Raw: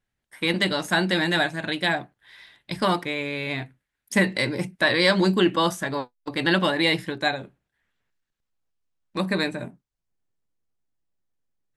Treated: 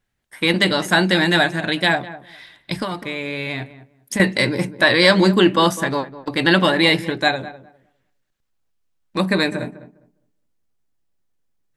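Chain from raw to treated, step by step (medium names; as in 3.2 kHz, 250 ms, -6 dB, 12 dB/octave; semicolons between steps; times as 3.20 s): 2.81–4.20 s: compression 12:1, threshold -28 dBFS, peak gain reduction 13 dB; filtered feedback delay 203 ms, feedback 20%, low-pass 1.2 kHz, level -14 dB; trim +6 dB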